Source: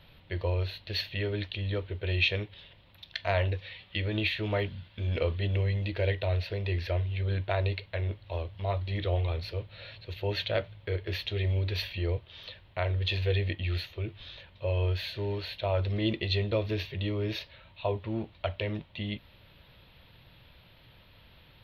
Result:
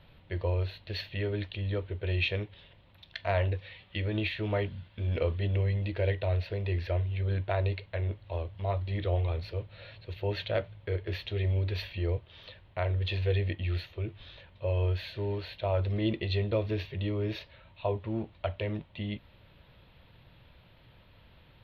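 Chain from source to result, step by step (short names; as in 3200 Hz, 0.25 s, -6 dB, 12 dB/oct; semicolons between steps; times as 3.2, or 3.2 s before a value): high shelf 3000 Hz -9.5 dB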